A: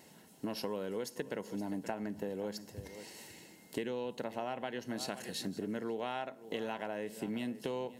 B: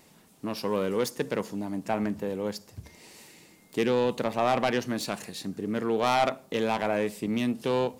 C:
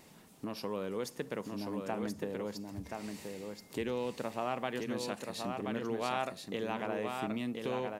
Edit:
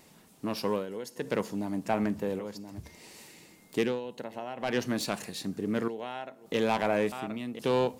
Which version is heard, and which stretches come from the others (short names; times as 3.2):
B
0.78–1.24 from A, crossfade 0.16 s
2.39–2.79 from C
3.89–4.69 from A, crossfade 0.24 s
5.88–6.46 from A
7.12–7.59 from C